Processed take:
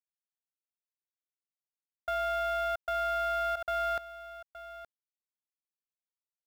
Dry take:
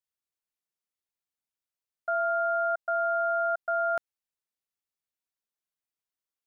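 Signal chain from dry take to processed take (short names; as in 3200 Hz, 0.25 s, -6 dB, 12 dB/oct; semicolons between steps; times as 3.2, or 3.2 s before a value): soft clip -27.5 dBFS, distortion -13 dB; companded quantiser 6-bit; echo 0.87 s -14.5 dB; backwards sustainer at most 66 dB/s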